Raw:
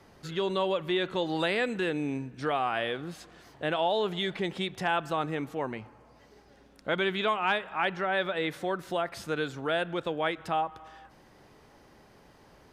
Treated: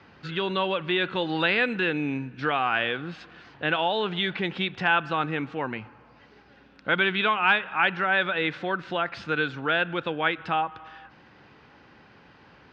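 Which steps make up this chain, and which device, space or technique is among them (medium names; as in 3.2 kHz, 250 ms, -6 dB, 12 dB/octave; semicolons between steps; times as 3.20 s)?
guitar cabinet (cabinet simulation 76–4500 Hz, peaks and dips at 400 Hz -4 dB, 630 Hz -6 dB, 1.5 kHz +6 dB, 2.6 kHz +6 dB); trim +4 dB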